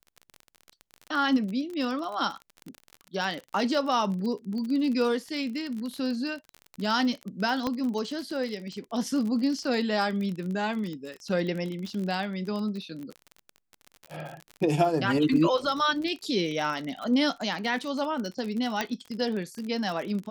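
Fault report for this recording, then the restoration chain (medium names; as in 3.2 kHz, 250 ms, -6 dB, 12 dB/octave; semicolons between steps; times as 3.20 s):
crackle 39 per s -32 dBFS
7.67 s: pop -15 dBFS
18.81 s: pop -13 dBFS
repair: de-click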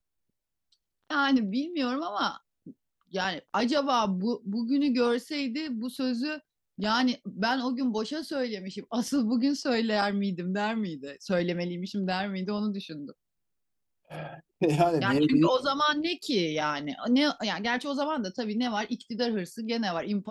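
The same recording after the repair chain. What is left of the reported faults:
7.67 s: pop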